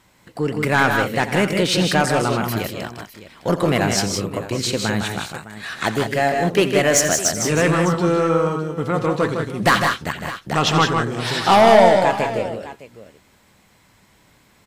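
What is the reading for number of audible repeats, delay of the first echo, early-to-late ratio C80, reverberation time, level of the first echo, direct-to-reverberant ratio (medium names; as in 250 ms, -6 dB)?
3, 86 ms, no reverb, no reverb, -13.5 dB, no reverb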